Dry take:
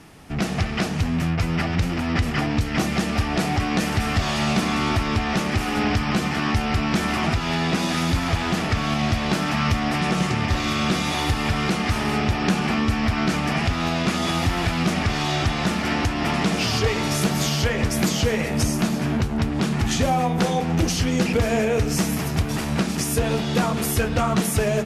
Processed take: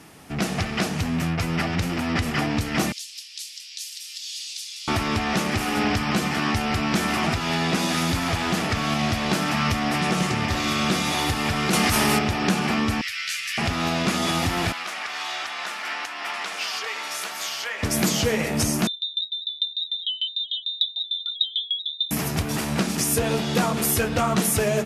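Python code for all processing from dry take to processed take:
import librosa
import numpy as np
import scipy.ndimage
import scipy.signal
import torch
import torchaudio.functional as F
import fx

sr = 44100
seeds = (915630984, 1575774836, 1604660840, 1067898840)

y = fx.chain(x, sr, fx.cheby2_highpass(hz=650.0, order=4, stop_db=80),
    fx.high_shelf(hz=10000.0, db=-8.5), at=(2.92, 4.88))
y = fx.chain(y, sr, fx.high_shelf(hz=7900.0, db=12.0),
    fx.env_flatten(amount_pct=70), at=(11.73, 12.19))
y = fx.chain(y, sr, fx.cheby2_highpass(hz=930.0, order=4, stop_db=40),
    fx.doubler(ms=12.0, db=-3.0), at=(13.01, 13.58))
y = fx.chain(y, sr, fx.highpass(hz=1100.0, slope=12),
    fx.high_shelf(hz=3700.0, db=-9.0), at=(14.72, 17.83))
y = fx.chain(y, sr, fx.spec_expand(power=3.6),
    fx.freq_invert(carrier_hz=3800),
    fx.tremolo_decay(direction='decaying', hz=6.7, depth_db=24), at=(18.87, 22.11))
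y = fx.highpass(y, sr, hz=130.0, slope=6)
y = fx.high_shelf(y, sr, hz=8700.0, db=7.5)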